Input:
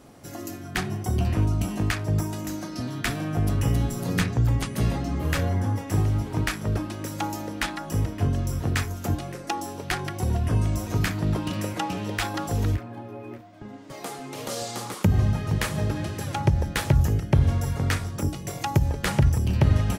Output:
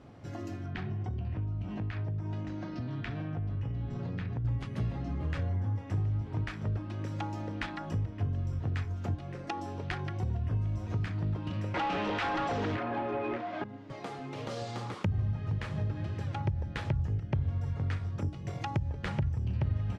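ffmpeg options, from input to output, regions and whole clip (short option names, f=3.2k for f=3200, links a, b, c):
-filter_complex "[0:a]asettb=1/sr,asplit=3[a][b][c];[a]atrim=end=0.664[d];[b]atrim=start=0.66:end=4.45,asetpts=PTS-STARTPTS,afade=t=in:d=0.004:c=qsin,afade=t=out:st=3.786:d=0.004:c=qsin,lowpass=4.3k,bandreject=f=1.2k:w=20,acompressor=threshold=-29dB:ratio=4:attack=3.2:release=140:knee=1:detection=peak[e];[c]atrim=start=4.446[f];[d][e]acrossfade=d=0.004:c1=hsin:c2=qsin[g];[g][f]acrossfade=d=0.004:c1=qsin:c2=hsin,asettb=1/sr,asplit=3[h][i][j];[h]atrim=end=11.744[k];[i]atrim=start=11.74:end=13.64,asetpts=PTS-STARTPTS,afade=t=in:d=0.004:c=qsin,afade=t=out:st=1.896:d=0.004:c=qsin,highpass=180,lowpass=8k,asplit=2[l][m];[m]highpass=f=720:p=1,volume=30dB,asoftclip=type=tanh:threshold=-11.5dB[n];[l][n]amix=inputs=2:normalize=0,lowpass=f=3.1k:p=1,volume=-6dB[o];[j]atrim=start=13.636[p];[k][o]acrossfade=d=0.004:c1=hsin:c2=qsin[q];[q][p]acrossfade=d=0.004:c1=qsin:c2=hsin,lowpass=3.5k,equalizer=f=100:t=o:w=1.1:g=8.5,acompressor=threshold=-29dB:ratio=2.5,volume=-4.5dB"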